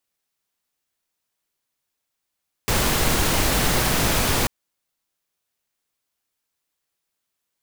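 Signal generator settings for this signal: noise pink, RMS -20 dBFS 1.79 s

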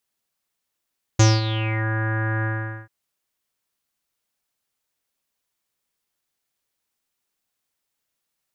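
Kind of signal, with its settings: synth note square A2 24 dB/octave, low-pass 1.7 kHz, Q 7.9, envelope 2 oct, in 0.65 s, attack 7.9 ms, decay 0.21 s, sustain -12 dB, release 0.44 s, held 1.25 s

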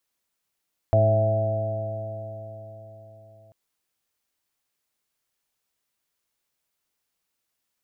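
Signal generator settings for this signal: stretched partials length 2.59 s, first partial 106 Hz, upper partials -14/-15.5/-19/-9.5/1/-17 dB, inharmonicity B 0.0021, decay 4.32 s, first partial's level -18 dB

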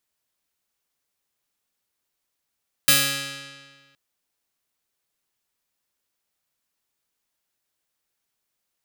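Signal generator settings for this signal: plucked string C#3, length 1.07 s, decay 1.59 s, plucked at 0.38, bright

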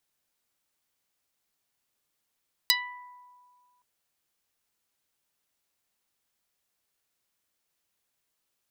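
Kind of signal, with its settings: plucked string B5, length 1.12 s, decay 2.01 s, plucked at 0.12, dark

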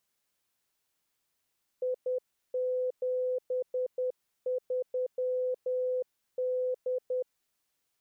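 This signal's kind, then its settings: Morse "I73D" 10 wpm 506 Hz -27.5 dBFS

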